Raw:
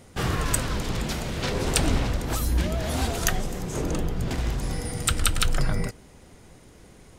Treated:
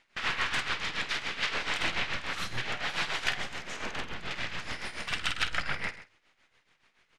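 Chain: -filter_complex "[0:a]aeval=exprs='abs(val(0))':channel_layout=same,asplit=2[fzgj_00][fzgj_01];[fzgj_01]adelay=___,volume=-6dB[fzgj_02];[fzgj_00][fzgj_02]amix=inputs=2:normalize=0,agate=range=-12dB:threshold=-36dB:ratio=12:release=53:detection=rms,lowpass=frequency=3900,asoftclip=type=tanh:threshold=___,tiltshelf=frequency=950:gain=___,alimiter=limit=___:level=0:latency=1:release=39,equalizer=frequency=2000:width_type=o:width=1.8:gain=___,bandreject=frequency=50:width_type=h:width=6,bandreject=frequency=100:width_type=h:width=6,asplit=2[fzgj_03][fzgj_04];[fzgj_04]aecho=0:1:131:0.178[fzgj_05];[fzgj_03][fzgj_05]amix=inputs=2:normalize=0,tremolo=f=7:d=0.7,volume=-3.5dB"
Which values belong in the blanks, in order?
50, -11.5dB, -8.5, -15.5dB, 8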